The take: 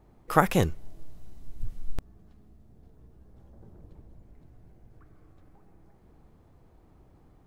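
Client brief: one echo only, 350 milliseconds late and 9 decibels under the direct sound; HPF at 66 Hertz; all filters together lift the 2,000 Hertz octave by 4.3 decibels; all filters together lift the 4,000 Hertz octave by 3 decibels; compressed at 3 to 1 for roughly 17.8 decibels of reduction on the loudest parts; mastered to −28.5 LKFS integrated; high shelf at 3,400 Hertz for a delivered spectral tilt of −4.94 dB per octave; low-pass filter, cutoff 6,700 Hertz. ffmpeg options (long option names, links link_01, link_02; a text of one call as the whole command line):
ffmpeg -i in.wav -af "highpass=66,lowpass=6700,equalizer=frequency=2000:width_type=o:gain=6,highshelf=frequency=3400:gain=-4,equalizer=frequency=4000:width_type=o:gain=4.5,acompressor=threshold=-38dB:ratio=3,aecho=1:1:350:0.355,volume=17dB" out.wav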